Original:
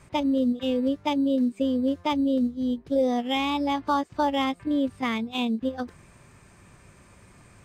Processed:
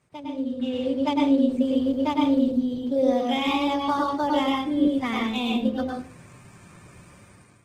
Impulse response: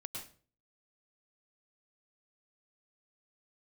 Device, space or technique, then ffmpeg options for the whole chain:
far-field microphone of a smart speaker: -filter_complex "[1:a]atrim=start_sample=2205[s0];[0:a][s0]afir=irnorm=-1:irlink=0,highpass=99,dynaudnorm=f=280:g=5:m=5.01,volume=0.422" -ar 48000 -c:a libopus -b:a 16k

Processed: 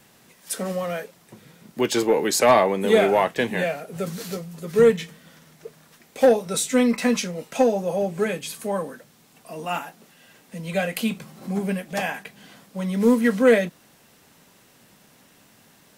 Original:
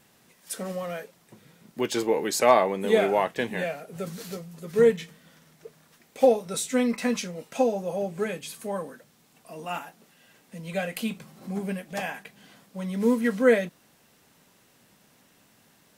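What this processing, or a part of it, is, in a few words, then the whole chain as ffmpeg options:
one-band saturation: -filter_complex "[0:a]acrossover=split=230|2500[s0][s1][s2];[s1]asoftclip=type=tanh:threshold=0.188[s3];[s0][s3][s2]amix=inputs=3:normalize=0,volume=1.88"

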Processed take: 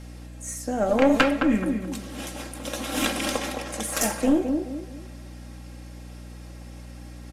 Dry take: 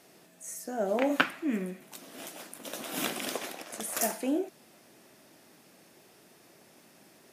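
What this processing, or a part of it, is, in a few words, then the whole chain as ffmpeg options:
valve amplifier with mains hum: -filter_complex "[0:a]lowpass=10000,aecho=1:1:3.7:0.64,asplit=2[s0][s1];[s1]adelay=214,lowpass=f=1100:p=1,volume=0.531,asplit=2[s2][s3];[s3]adelay=214,lowpass=f=1100:p=1,volume=0.37,asplit=2[s4][s5];[s5]adelay=214,lowpass=f=1100:p=1,volume=0.37,asplit=2[s6][s7];[s7]adelay=214,lowpass=f=1100:p=1,volume=0.37[s8];[s0][s2][s4][s6][s8]amix=inputs=5:normalize=0,aeval=exprs='(tanh(7.08*val(0)+0.4)-tanh(0.4))/7.08':c=same,aeval=exprs='val(0)+0.00447*(sin(2*PI*60*n/s)+sin(2*PI*2*60*n/s)/2+sin(2*PI*3*60*n/s)/3+sin(2*PI*4*60*n/s)/4+sin(2*PI*5*60*n/s)/5)':c=same,volume=2.37"

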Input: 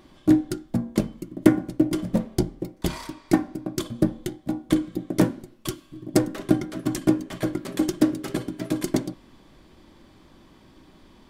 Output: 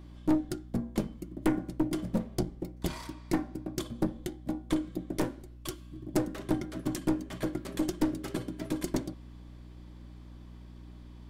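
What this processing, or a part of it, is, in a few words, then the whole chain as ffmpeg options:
valve amplifier with mains hum: -filter_complex "[0:a]aeval=exprs='(tanh(5.62*val(0)+0.45)-tanh(0.45))/5.62':c=same,aeval=exprs='val(0)+0.00794*(sin(2*PI*60*n/s)+sin(2*PI*2*60*n/s)/2+sin(2*PI*3*60*n/s)/3+sin(2*PI*4*60*n/s)/4+sin(2*PI*5*60*n/s)/5)':c=same,asettb=1/sr,asplit=3[s0][s1][s2];[s0]atrim=end=5.174[s3];[s1]atrim=start=5.17:end=5.8,asetpts=PTS-STARTPTS,afade=t=in:d=0.004:c=qsin,afade=t=out:st=0.626:d=0.004:c=qsin,equalizer=f=190:t=o:w=0.84:g=-8[s4];[s2]atrim=start=5.796[s5];[s3][s4]acrossfade=d=0.004:c1=hsin:c2=qsin[s6];[s6][s5]acrossfade=d=0.004:c1=qsin:c2=hsin,volume=0.596"

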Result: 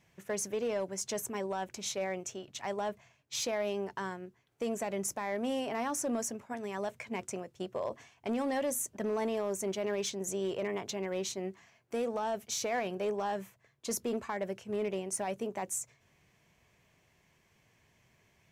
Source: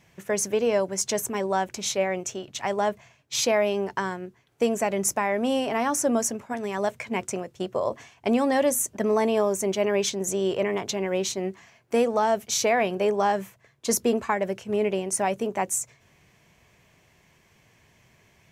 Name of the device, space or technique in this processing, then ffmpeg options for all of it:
limiter into clipper: -af "alimiter=limit=0.15:level=0:latency=1:release=15,asoftclip=type=hard:threshold=0.119,volume=0.376"

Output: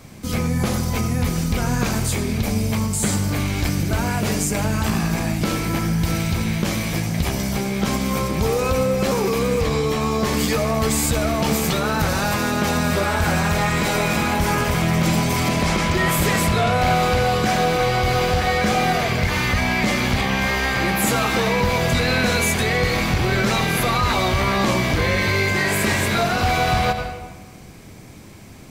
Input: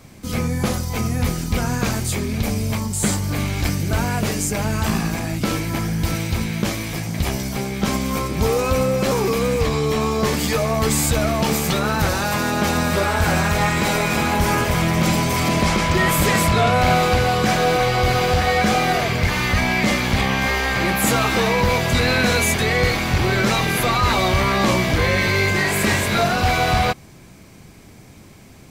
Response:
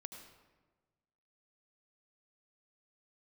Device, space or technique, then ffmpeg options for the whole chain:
ducked reverb: -filter_complex "[0:a]asplit=3[s0][s1][s2];[1:a]atrim=start_sample=2205[s3];[s1][s3]afir=irnorm=-1:irlink=0[s4];[s2]apad=whole_len=1266065[s5];[s4][s5]sidechaincompress=threshold=0.0794:ratio=8:attack=16:release=147,volume=3.16[s6];[s0][s6]amix=inputs=2:normalize=0,volume=0.473"

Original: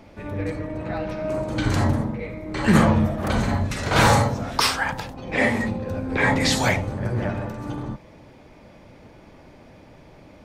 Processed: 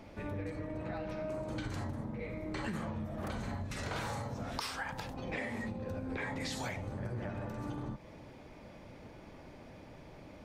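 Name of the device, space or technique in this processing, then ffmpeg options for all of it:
serial compression, leveller first: -af "acompressor=threshold=0.0891:ratio=2.5,acompressor=threshold=0.0251:ratio=5,volume=0.596"

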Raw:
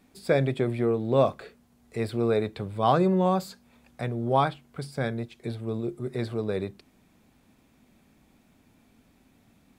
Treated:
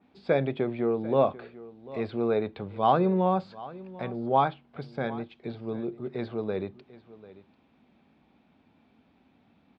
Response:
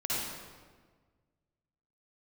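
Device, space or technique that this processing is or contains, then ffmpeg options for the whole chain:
guitar cabinet: -af "highpass=82,equalizer=f=120:t=q:w=4:g=-7,equalizer=f=830:t=q:w=4:g=4,equalizer=f=1900:t=q:w=4:g=-3,lowpass=f=3800:w=0.5412,lowpass=f=3800:w=1.3066,aecho=1:1:743:0.119,adynamicequalizer=threshold=0.00631:dfrequency=2800:dqfactor=0.7:tfrequency=2800:tqfactor=0.7:attack=5:release=100:ratio=0.375:range=2:mode=cutabove:tftype=highshelf,volume=0.841"

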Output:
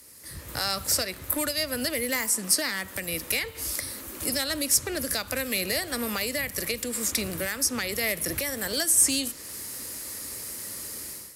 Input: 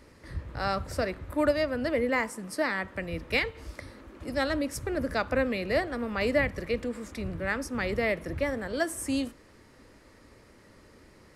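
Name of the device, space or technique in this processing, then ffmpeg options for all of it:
FM broadcast chain: -filter_complex "[0:a]highpass=60,dynaudnorm=f=300:g=3:m=5.31,acrossover=split=200|2200|6500[s0][s1][s2][s3];[s0]acompressor=threshold=0.0251:ratio=4[s4];[s1]acompressor=threshold=0.0794:ratio=4[s5];[s2]acompressor=threshold=0.0355:ratio=4[s6];[s3]acompressor=threshold=0.00282:ratio=4[s7];[s4][s5][s6][s7]amix=inputs=4:normalize=0,aemphasis=mode=production:type=75fm,alimiter=limit=0.211:level=0:latency=1:release=358,asoftclip=type=hard:threshold=0.141,lowpass=f=15000:w=0.5412,lowpass=f=15000:w=1.3066,aemphasis=mode=production:type=75fm,volume=0.501"

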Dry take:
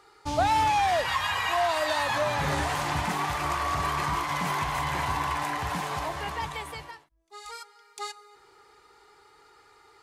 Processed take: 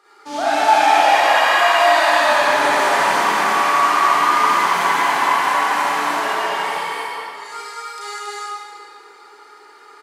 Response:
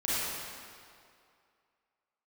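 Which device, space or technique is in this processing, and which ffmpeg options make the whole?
stadium PA: -filter_complex "[0:a]asettb=1/sr,asplit=3[s0][s1][s2];[s0]atrim=end=5.264[s3];[s1]atrim=start=5.26:end=5.91,asetpts=PTS-STARTPTS,afade=t=in:d=0.004:c=qsin,afade=t=out:st=0.646:d=0.004:c=qsin,highpass=210[s4];[s2]atrim=start=5.906[s5];[s3][s4]acrossfade=d=0.004:c1=hsin:c2=qsin[s6];[s6][s5]acrossfade=d=0.004:c1=qsin:c2=hsin,highpass=f=240:w=0.5412,highpass=f=240:w=1.3066,equalizer=f=1500:t=o:w=0.77:g=3.5,aecho=1:1:201.2|277:0.631|0.708[s7];[1:a]atrim=start_sample=2205[s8];[s7][s8]afir=irnorm=-1:irlink=0,volume=0.891"

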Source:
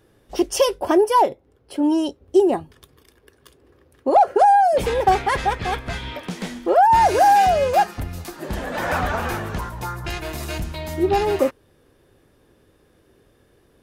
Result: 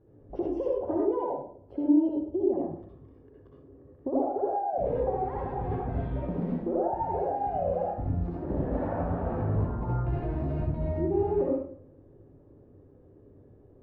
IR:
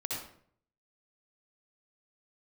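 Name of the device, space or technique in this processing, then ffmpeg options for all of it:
television next door: -filter_complex "[0:a]acompressor=threshold=0.0501:ratio=6,lowpass=550[s0];[1:a]atrim=start_sample=2205[s1];[s0][s1]afir=irnorm=-1:irlink=0"

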